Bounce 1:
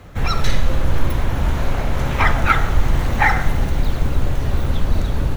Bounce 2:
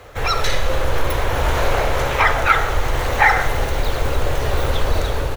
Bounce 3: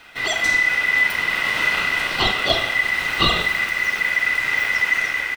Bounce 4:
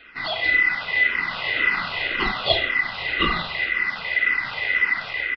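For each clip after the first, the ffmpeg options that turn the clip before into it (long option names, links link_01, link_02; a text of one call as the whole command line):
ffmpeg -i in.wav -filter_complex "[0:a]dynaudnorm=framelen=130:gausssize=7:maxgain=11.5dB,firequalizer=gain_entry='entry(120,0);entry(170,-9);entry(460,12);entry(660,9)':delay=0.05:min_phase=1,asplit=2[link_01][link_02];[link_02]alimiter=limit=-4dB:level=0:latency=1,volume=-1dB[link_03];[link_01][link_03]amix=inputs=2:normalize=0,volume=-10.5dB" out.wav
ffmpeg -i in.wav -filter_complex "[0:a]aeval=exprs='val(0)*sin(2*PI*2000*n/s)':channel_layout=same,asplit=2[link_01][link_02];[link_02]adelay=35,volume=-11.5dB[link_03];[link_01][link_03]amix=inputs=2:normalize=0,volume=-1.5dB" out.wav
ffmpeg -i in.wav -filter_complex "[0:a]aresample=11025,aresample=44100,asplit=2[link_01][link_02];[link_02]afreqshift=-1.9[link_03];[link_01][link_03]amix=inputs=2:normalize=1" out.wav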